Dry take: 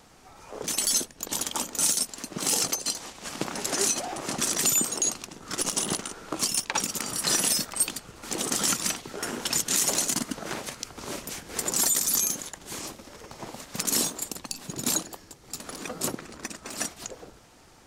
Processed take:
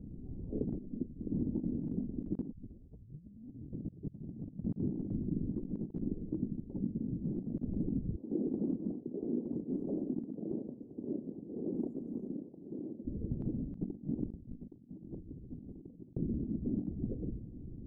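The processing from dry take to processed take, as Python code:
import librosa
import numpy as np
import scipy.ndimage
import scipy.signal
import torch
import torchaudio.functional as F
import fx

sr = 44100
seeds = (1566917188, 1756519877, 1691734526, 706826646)

y = fx.highpass(x, sr, hz=400.0, slope=12, at=(8.16, 13.05))
y = fx.env_flatten(y, sr, amount_pct=70, at=(14.15, 16.17))
y = fx.edit(y, sr, fx.fade_in_from(start_s=0.78, length_s=0.91, floor_db=-16.5),
    fx.tape_start(start_s=2.52, length_s=2.87),
    fx.fade_down_up(start_s=6.02, length_s=1.53, db=-8.5, fade_s=0.33), tone=tone)
y = fx.wiener(y, sr, points=25)
y = scipy.signal.sosfilt(scipy.signal.cheby2(4, 80, 1700.0, 'lowpass', fs=sr, output='sos'), y)
y = fx.over_compress(y, sr, threshold_db=-46.0, ratio=-0.5)
y = y * librosa.db_to_amplitude(8.5)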